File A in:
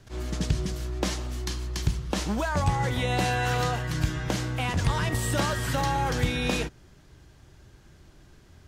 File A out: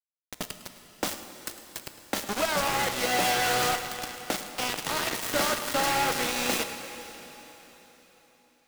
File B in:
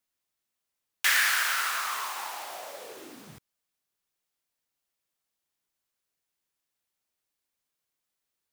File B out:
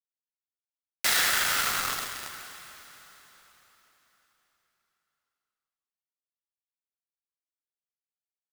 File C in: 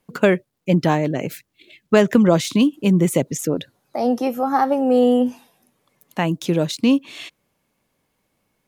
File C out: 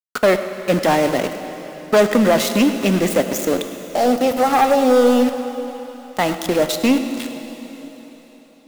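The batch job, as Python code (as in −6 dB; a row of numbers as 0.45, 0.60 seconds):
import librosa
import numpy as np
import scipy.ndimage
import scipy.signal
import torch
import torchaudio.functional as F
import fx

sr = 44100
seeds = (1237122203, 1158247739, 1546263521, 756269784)

p1 = fx.self_delay(x, sr, depth_ms=0.18)
p2 = scipy.signal.sosfilt(scipy.signal.butter(4, 230.0, 'highpass', fs=sr, output='sos'), p1)
p3 = p2 + 0.3 * np.pad(p2, (int(1.5 * sr / 1000.0), 0))[:len(p2)]
p4 = fx.leveller(p3, sr, passes=3)
p5 = fx.vibrato(p4, sr, rate_hz=6.5, depth_cents=20.0)
p6 = np.where(np.abs(p5) >= 10.0 ** (-17.0 / 20.0), p5, 0.0)
p7 = p6 + fx.echo_single(p6, sr, ms=105, db=-16.5, dry=0)
p8 = fx.rev_plate(p7, sr, seeds[0], rt60_s=4.1, hf_ratio=0.95, predelay_ms=0, drr_db=8.0)
y = p8 * librosa.db_to_amplitude(-5.5)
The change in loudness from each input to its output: +0.5, +1.0, +1.5 LU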